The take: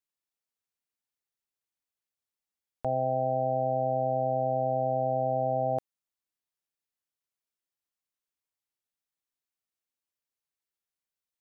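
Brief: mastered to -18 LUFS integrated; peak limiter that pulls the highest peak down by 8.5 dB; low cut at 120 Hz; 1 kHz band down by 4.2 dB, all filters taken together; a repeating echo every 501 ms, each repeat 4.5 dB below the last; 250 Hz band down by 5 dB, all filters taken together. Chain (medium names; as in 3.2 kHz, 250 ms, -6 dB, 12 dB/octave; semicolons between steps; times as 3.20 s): high-pass 120 Hz; peaking EQ 250 Hz -5 dB; peaking EQ 1 kHz -6 dB; peak limiter -30 dBFS; feedback delay 501 ms, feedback 60%, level -4.5 dB; trim +24.5 dB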